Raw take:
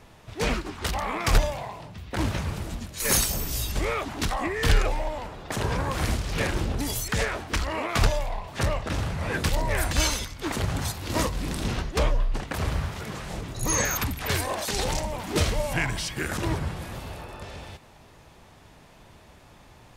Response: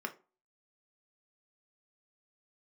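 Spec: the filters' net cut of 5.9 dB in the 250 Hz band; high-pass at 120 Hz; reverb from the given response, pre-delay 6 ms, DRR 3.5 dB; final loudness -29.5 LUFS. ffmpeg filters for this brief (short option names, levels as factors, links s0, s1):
-filter_complex "[0:a]highpass=120,equalizer=f=250:t=o:g=-8,asplit=2[s0][s1];[1:a]atrim=start_sample=2205,adelay=6[s2];[s1][s2]afir=irnorm=-1:irlink=0,volume=0.501[s3];[s0][s3]amix=inputs=2:normalize=0,volume=0.944"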